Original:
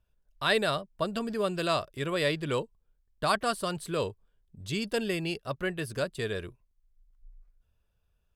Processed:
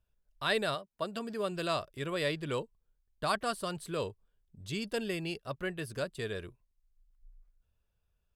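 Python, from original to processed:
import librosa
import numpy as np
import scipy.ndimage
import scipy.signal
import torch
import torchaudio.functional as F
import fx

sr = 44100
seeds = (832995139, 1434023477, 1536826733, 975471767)

y = fx.highpass(x, sr, hz=fx.line((0.74, 380.0), (1.51, 120.0)), slope=6, at=(0.74, 1.51), fade=0.02)
y = F.gain(torch.from_numpy(y), -4.5).numpy()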